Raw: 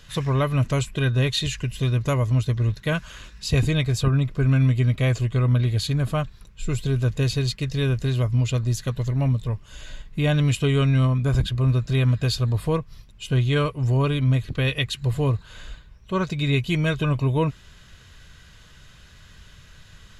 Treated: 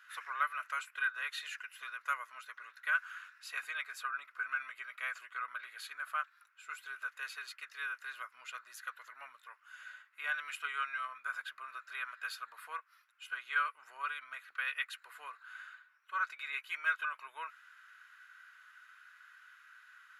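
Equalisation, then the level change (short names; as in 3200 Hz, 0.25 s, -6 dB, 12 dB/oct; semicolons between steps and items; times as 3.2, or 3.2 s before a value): ladder high-pass 1300 Hz, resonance 75%; band shelf 5100 Hz -8.5 dB; +1.0 dB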